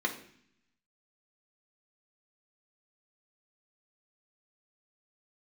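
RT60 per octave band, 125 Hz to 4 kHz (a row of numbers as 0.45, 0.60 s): 1.1, 0.95, 0.60, 0.60, 0.75, 0.80 s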